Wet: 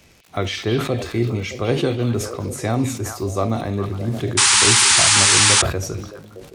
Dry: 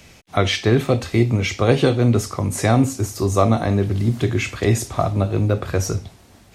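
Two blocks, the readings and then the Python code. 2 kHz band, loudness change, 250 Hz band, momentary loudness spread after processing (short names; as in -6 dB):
+7.0 dB, +3.0 dB, -4.0 dB, 15 LU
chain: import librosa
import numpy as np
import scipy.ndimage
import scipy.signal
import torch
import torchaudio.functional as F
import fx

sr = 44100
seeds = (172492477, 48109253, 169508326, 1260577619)

p1 = fx.peak_eq(x, sr, hz=360.0, db=3.0, octaves=0.7)
p2 = fx.dmg_crackle(p1, sr, seeds[0], per_s=85.0, level_db=-30.0)
p3 = p2 + fx.echo_stepped(p2, sr, ms=206, hz=3200.0, octaves=-1.4, feedback_pct=70, wet_db=-5.0, dry=0)
p4 = fx.spec_paint(p3, sr, seeds[1], shape='noise', start_s=4.37, length_s=1.25, low_hz=780.0, high_hz=10000.0, level_db=-8.0)
p5 = fx.sustainer(p4, sr, db_per_s=83.0)
y = F.gain(torch.from_numpy(p5), -6.0).numpy()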